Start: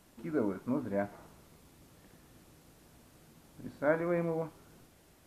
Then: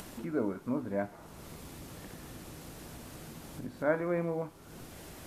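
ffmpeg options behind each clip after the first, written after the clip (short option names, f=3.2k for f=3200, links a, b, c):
-af "acompressor=mode=upward:threshold=-34dB:ratio=2.5"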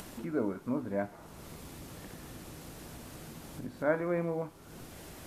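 -af anull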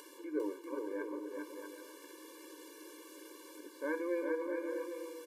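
-af "aecho=1:1:400|640|784|870.4|922.2:0.631|0.398|0.251|0.158|0.1,afftfilt=real='re*eq(mod(floor(b*sr/1024/300),2),1)':imag='im*eq(mod(floor(b*sr/1024/300),2),1)':win_size=1024:overlap=0.75,volume=-3dB"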